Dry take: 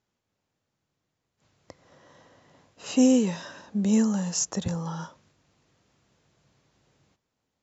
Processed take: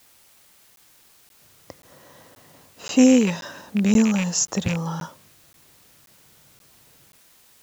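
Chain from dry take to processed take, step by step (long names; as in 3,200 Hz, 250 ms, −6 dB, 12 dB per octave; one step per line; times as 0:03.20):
loose part that buzzes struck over −28 dBFS, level −23 dBFS
bit-depth reduction 10 bits, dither triangular
regular buffer underruns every 0.53 s, samples 512, zero, from 0:00.76
level +5 dB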